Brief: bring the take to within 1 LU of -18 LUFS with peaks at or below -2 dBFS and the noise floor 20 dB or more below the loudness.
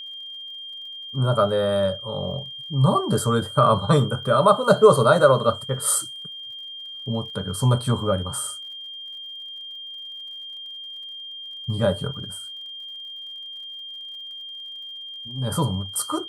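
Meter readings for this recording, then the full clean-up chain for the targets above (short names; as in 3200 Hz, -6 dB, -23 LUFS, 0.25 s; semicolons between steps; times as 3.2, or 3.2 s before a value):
ticks 58/s; steady tone 3200 Hz; tone level -34 dBFS; loudness -21.5 LUFS; peak -2.5 dBFS; loudness target -18.0 LUFS
-> de-click; notch 3200 Hz, Q 30; gain +3.5 dB; limiter -2 dBFS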